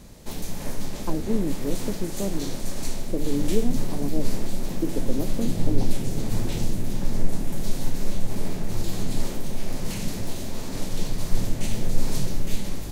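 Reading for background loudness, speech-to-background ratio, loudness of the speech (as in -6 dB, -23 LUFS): -32.0 LUFS, 1.0 dB, -31.0 LUFS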